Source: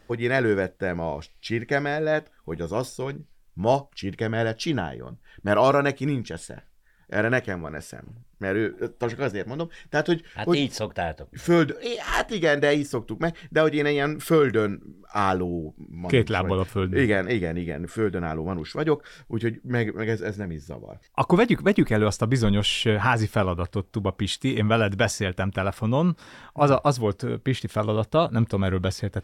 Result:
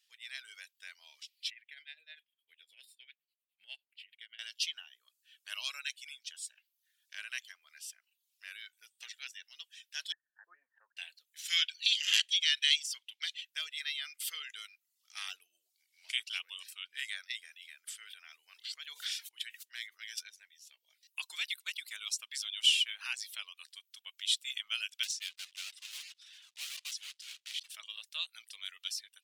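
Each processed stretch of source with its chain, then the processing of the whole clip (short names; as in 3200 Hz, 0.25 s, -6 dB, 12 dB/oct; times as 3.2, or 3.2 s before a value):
1.5–4.39 tone controls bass +8 dB, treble -9 dB + tremolo 9.9 Hz, depth 77% + fixed phaser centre 2600 Hz, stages 4
10.12–10.97 Chebyshev low-pass 1800 Hz, order 8 + expander -43 dBFS + low shelf 220 Hz -6.5 dB
11.48–13.45 weighting filter D + mismatched tape noise reduction decoder only
17.45–20.29 HPF 440 Hz 6 dB/oct + sustainer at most 54 dB/s
25.03–27.7 block floating point 3-bit + air absorption 67 m + hard clip -25.5 dBFS
whole clip: Chebyshev high-pass 2900 Hz, order 3; reverb removal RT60 0.51 s; AGC gain up to 7 dB; gain -7 dB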